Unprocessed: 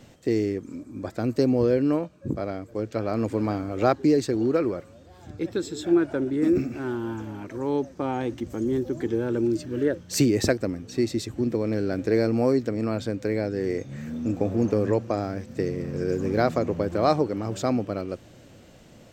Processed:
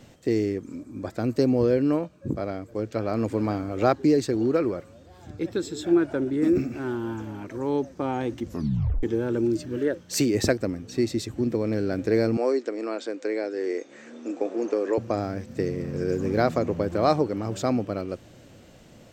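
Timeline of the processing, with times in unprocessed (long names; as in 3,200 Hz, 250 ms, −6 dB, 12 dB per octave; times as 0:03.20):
0:08.46: tape stop 0.57 s
0:09.77–0:10.35: parametric band 77 Hz −8 dB 2.6 octaves
0:12.37–0:14.98: elliptic band-pass filter 330–7,800 Hz, stop band 50 dB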